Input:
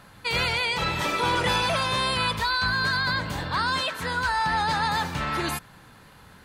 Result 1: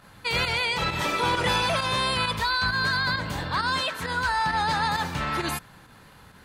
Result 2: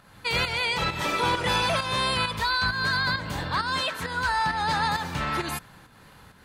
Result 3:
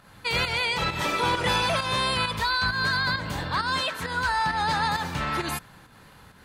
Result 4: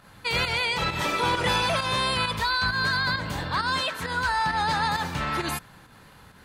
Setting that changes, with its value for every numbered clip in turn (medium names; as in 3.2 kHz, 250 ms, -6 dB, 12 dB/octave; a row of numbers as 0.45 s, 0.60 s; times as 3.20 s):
volume shaper, release: 65 ms, 266 ms, 164 ms, 108 ms